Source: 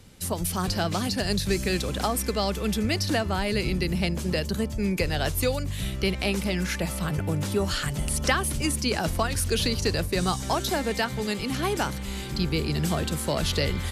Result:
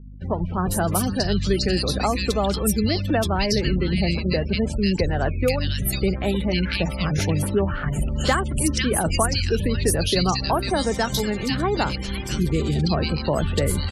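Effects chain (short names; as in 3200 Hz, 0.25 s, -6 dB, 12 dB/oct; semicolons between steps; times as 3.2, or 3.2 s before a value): spectral repair 7.3–7.73, 3100–6400 Hz before; hum 50 Hz, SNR 14 dB; in parallel at -3 dB: bit-crush 5-bit; on the sum: spectral gate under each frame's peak -25 dB strong; bands offset in time lows, highs 0.5 s, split 2000 Hz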